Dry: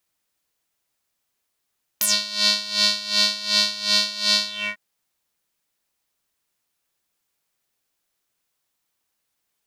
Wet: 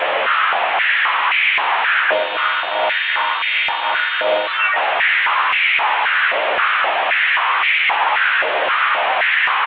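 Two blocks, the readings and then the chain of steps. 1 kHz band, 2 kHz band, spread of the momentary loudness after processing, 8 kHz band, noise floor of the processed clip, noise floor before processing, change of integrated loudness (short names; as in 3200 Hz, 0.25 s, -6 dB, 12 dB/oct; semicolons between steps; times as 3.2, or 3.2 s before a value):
+24.0 dB, +19.5 dB, 3 LU, under -40 dB, -21 dBFS, -77 dBFS, +4.5 dB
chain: delta modulation 16 kbps, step -18 dBFS; gate with hold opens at -20 dBFS; doubler 13 ms -5 dB; on a send: echo 0.893 s -14.5 dB; on the sum: stepped high-pass 3.8 Hz 590–2200 Hz; gain +3 dB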